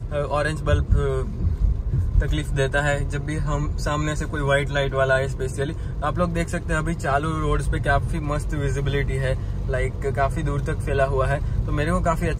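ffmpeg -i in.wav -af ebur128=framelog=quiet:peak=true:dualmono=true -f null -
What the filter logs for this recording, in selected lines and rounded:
Integrated loudness:
  I:         -20.6 LUFS
  Threshold: -30.6 LUFS
Loudness range:
  LRA:         1.0 LU
  Threshold: -40.8 LUFS
  LRA low:   -21.2 LUFS
  LRA high:  -20.2 LUFS
True peak:
  Peak:       -5.8 dBFS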